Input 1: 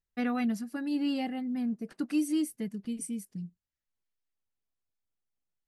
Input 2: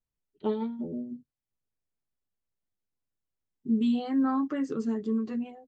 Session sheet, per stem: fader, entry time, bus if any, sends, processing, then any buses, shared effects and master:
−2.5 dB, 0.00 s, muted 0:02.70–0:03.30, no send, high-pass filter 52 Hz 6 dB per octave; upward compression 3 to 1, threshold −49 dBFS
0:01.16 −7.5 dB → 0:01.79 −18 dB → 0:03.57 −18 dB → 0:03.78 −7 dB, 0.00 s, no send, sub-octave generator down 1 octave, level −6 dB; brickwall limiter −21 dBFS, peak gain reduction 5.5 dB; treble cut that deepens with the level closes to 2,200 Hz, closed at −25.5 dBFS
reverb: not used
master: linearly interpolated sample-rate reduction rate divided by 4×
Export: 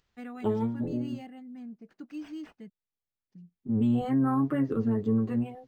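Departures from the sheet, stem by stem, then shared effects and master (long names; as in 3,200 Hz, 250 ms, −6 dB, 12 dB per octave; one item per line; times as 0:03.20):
stem 1 −2.5 dB → −11.0 dB
stem 2 −7.5 dB → +2.5 dB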